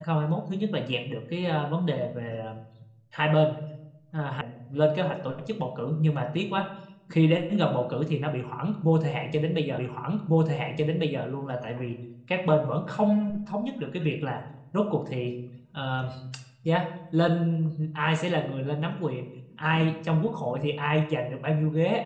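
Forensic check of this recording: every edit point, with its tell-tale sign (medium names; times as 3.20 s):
4.41 s: sound stops dead
9.78 s: repeat of the last 1.45 s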